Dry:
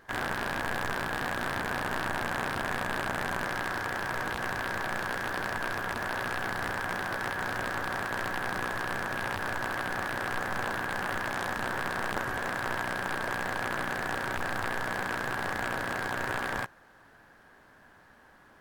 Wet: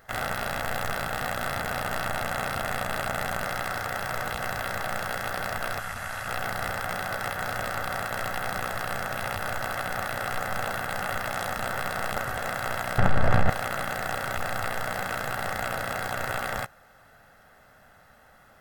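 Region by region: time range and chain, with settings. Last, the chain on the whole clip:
0:05.79–0:06.28: variable-slope delta modulation 64 kbit/s + parametric band 390 Hz −10 dB 2 octaves
0:12.98–0:13.50: RIAA equalisation playback + envelope flattener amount 70%
whole clip: high-shelf EQ 11,000 Hz +10.5 dB; comb filter 1.5 ms, depth 60%; level +1 dB

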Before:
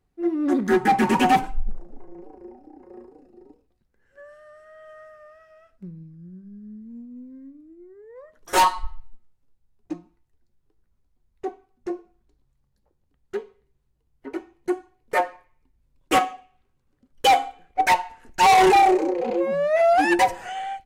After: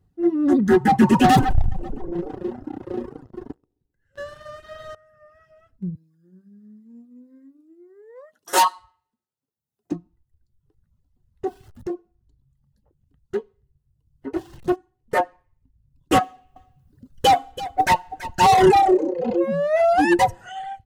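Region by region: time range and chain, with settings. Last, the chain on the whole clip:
0:01.24–0:04.95: repeating echo 132 ms, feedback 47%, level −13 dB + leveller curve on the samples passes 3
0:05.95–0:09.92: high-pass filter 430 Hz + high-shelf EQ 4,700 Hz +6 dB
0:11.47–0:11.94: converter with a step at zero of −44 dBFS + downward compressor 2 to 1, threshold −30 dBFS
0:14.36–0:14.76: converter with a step at zero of −37.5 dBFS + highs frequency-modulated by the lows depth 0.38 ms
0:16.23–0:18.46: mu-law and A-law mismatch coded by mu + single-tap delay 330 ms −13.5 dB
whole clip: reverb reduction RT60 0.98 s; parametric band 110 Hz +14.5 dB 2.3 octaves; notch filter 2,300 Hz, Q 6.8

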